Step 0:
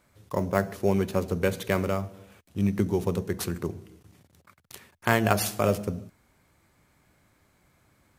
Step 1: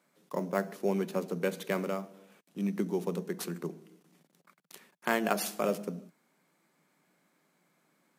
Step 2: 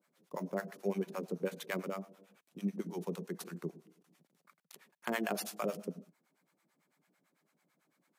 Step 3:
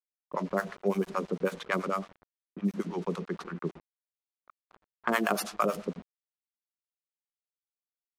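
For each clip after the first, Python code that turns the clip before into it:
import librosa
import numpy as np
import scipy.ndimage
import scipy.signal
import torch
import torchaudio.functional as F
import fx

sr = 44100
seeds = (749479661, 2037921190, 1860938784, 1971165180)

y1 = scipy.signal.sosfilt(scipy.signal.ellip(4, 1.0, 40, 160.0, 'highpass', fs=sr, output='sos'), x)
y1 = y1 * librosa.db_to_amplitude(-5.0)
y2 = fx.harmonic_tremolo(y1, sr, hz=9.0, depth_pct=100, crossover_hz=630.0)
y2 = y2 * librosa.db_to_amplitude(-1.0)
y3 = fx.peak_eq(y2, sr, hz=1200.0, db=9.0, octaves=0.62)
y3 = np.where(np.abs(y3) >= 10.0 ** (-51.0 / 20.0), y3, 0.0)
y3 = fx.env_lowpass(y3, sr, base_hz=1100.0, full_db=-30.5)
y3 = y3 * librosa.db_to_amplitude(6.0)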